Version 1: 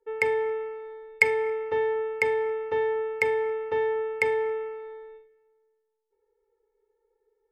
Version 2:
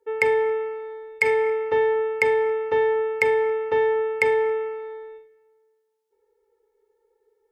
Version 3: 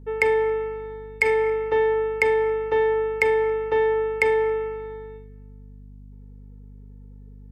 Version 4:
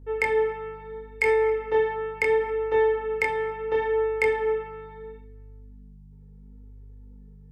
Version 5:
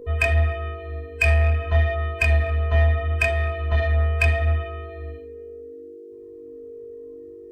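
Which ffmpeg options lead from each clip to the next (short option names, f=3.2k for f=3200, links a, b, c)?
-af "highpass=f=75:p=1,alimiter=level_in=11.5dB:limit=-1dB:release=50:level=0:latency=1,volume=-6dB"
-af "aeval=exprs='val(0)+0.00794*(sin(2*PI*50*n/s)+sin(2*PI*2*50*n/s)/2+sin(2*PI*3*50*n/s)/3+sin(2*PI*4*50*n/s)/4+sin(2*PI*5*50*n/s)/5)':c=same"
-af "flanger=delay=22.5:depth=4:speed=0.73"
-filter_complex "[0:a]afftfilt=real='real(if(between(b,1,1008),(2*floor((b-1)/24)+1)*24-b,b),0)':imag='imag(if(between(b,1,1008),(2*floor((b-1)/24)+1)*24-b,b),0)*if(between(b,1,1008),-1,1)':win_size=2048:overlap=0.75,asplit=2[a][b];[b]asoftclip=type=tanh:threshold=-26.5dB,volume=-3dB[c];[a][c]amix=inputs=2:normalize=0,volume=2dB"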